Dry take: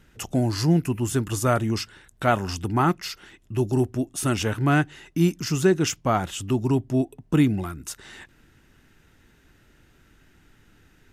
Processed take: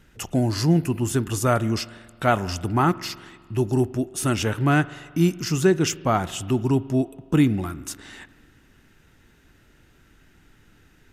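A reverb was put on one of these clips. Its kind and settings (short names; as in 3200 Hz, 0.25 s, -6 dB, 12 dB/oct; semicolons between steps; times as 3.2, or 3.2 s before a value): spring tank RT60 1.8 s, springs 44 ms, chirp 30 ms, DRR 17.5 dB; gain +1 dB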